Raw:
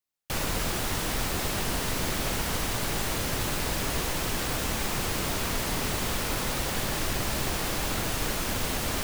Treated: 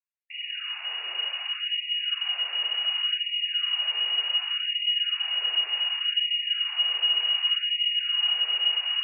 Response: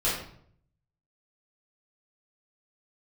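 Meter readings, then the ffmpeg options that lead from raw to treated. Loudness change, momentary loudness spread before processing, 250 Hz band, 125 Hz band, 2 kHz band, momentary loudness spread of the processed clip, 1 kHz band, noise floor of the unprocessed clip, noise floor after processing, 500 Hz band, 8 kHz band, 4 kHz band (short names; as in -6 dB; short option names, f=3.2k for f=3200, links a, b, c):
+4.5 dB, 0 LU, under -35 dB, under -40 dB, -1.0 dB, 7 LU, -12.0 dB, -31 dBFS, -38 dBFS, under -15 dB, under -40 dB, +13.0 dB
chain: -af "asubboost=boost=7:cutoff=53,lowpass=f=2.5k:t=q:w=0.5098,lowpass=f=2.5k:t=q:w=0.6013,lowpass=f=2.5k:t=q:w=0.9,lowpass=f=2.5k:t=q:w=2.563,afreqshift=-2900,afftfilt=real='re*gte(b*sr/1024,330*pow(1900/330,0.5+0.5*sin(2*PI*0.67*pts/sr)))':imag='im*gte(b*sr/1024,330*pow(1900/330,0.5+0.5*sin(2*PI*0.67*pts/sr)))':win_size=1024:overlap=0.75,volume=-7dB"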